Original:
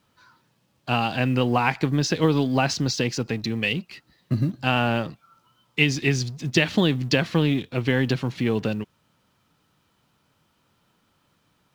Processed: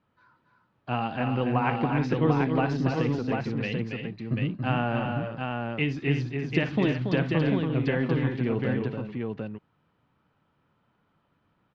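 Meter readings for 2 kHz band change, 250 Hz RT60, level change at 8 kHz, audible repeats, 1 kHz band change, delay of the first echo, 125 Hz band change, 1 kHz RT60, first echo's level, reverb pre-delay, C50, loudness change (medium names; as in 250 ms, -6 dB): -6.0 dB, no reverb, under -20 dB, 4, -2.5 dB, 57 ms, -2.0 dB, no reverb, -13.0 dB, no reverb, no reverb, -4.0 dB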